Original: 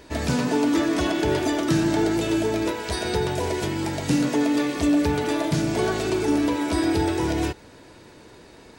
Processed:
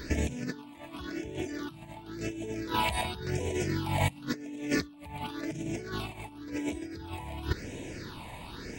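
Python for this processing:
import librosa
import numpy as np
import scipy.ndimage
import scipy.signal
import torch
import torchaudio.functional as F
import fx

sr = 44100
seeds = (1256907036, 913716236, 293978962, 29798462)

y = fx.over_compress(x, sr, threshold_db=-30.0, ratio=-0.5)
y = fx.phaser_stages(y, sr, stages=6, low_hz=380.0, high_hz=1300.0, hz=0.93, feedback_pct=25)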